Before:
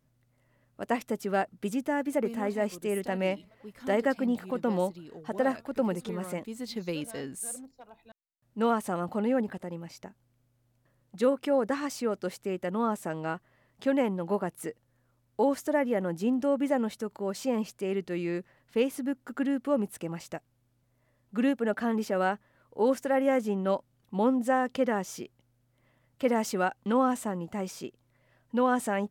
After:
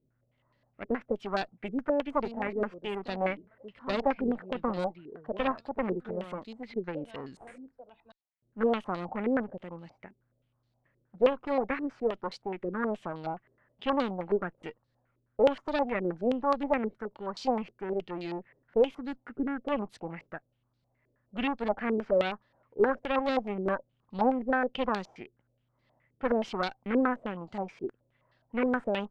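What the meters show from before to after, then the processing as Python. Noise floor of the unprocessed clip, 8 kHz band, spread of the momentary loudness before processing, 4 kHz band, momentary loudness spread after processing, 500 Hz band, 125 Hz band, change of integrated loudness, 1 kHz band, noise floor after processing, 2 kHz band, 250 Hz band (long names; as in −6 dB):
−71 dBFS, below −15 dB, 12 LU, +1.0 dB, 15 LU, −1.0 dB, −4.0 dB, −1.5 dB, −0.5 dB, −76 dBFS, −0.5 dB, −3.5 dB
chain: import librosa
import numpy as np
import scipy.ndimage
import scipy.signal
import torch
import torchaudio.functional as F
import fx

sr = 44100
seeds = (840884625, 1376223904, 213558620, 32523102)

y = fx.cheby_harmonics(x, sr, harmonics=(4,), levels_db=(-12,), full_scale_db=-14.5)
y = fx.filter_held_lowpass(y, sr, hz=9.5, low_hz=400.0, high_hz=4300.0)
y = F.gain(torch.from_numpy(y), -5.5).numpy()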